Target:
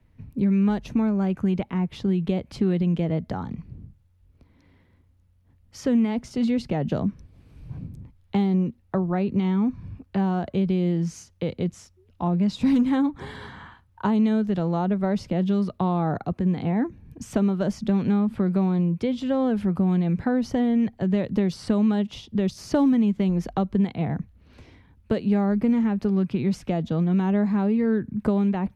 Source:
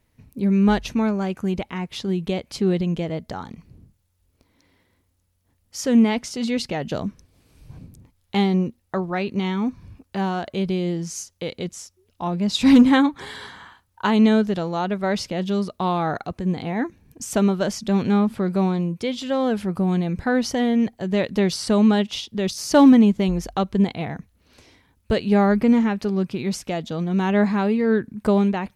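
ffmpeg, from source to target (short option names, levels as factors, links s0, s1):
-filter_complex "[0:a]acrossover=split=150[s0][s1];[s0]acompressor=threshold=0.0112:ratio=6[s2];[s2][s1]amix=inputs=2:normalize=0,bass=f=250:g=9,treble=f=4000:g=-12,acrossover=split=91|1100|5300[s3][s4][s5][s6];[s3]acompressor=threshold=0.00631:ratio=4[s7];[s4]acompressor=threshold=0.1:ratio=4[s8];[s5]acompressor=threshold=0.00708:ratio=4[s9];[s6]acompressor=threshold=0.00631:ratio=4[s10];[s7][s8][s9][s10]amix=inputs=4:normalize=0"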